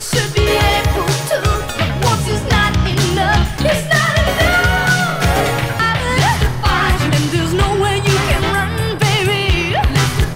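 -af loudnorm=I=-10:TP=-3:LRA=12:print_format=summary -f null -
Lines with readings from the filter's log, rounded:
Input Integrated:    -14.7 LUFS
Input True Peak:      -4.5 dBTP
Input LRA:             1.3 LU
Input Threshold:     -24.7 LUFS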